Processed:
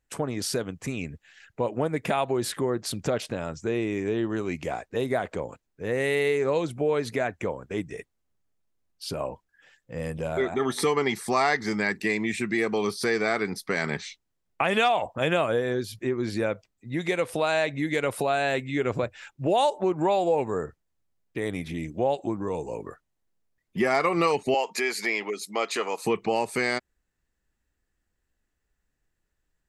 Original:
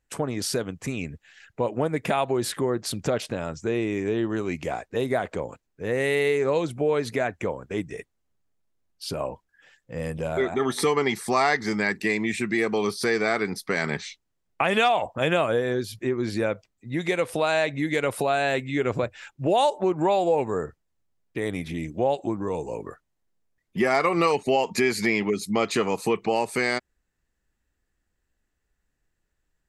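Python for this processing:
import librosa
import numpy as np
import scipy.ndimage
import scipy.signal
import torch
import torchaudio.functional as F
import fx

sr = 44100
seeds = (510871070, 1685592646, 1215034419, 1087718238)

y = fx.highpass(x, sr, hz=470.0, slope=12, at=(24.54, 26.05))
y = F.gain(torch.from_numpy(y), -1.5).numpy()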